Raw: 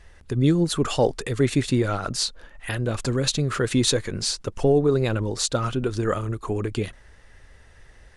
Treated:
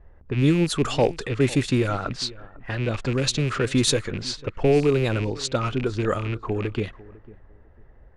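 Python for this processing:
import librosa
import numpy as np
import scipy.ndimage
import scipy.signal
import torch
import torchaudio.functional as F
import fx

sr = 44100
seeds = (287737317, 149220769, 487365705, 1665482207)

y = fx.rattle_buzz(x, sr, strikes_db=-26.0, level_db=-23.0)
y = fx.echo_feedback(y, sr, ms=499, feedback_pct=21, wet_db=-20)
y = fx.env_lowpass(y, sr, base_hz=810.0, full_db=-17.0)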